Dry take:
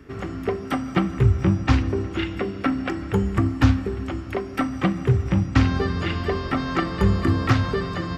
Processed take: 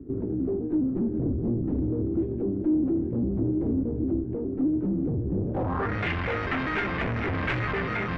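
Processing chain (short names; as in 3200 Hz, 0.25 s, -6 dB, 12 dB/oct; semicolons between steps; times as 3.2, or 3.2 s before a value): trilling pitch shifter +3 st, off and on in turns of 0.202 s; wavefolder -17 dBFS; tube stage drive 32 dB, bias 0.75; low-pass sweep 320 Hz -> 2200 Hz, 5.35–5.99; gain +5 dB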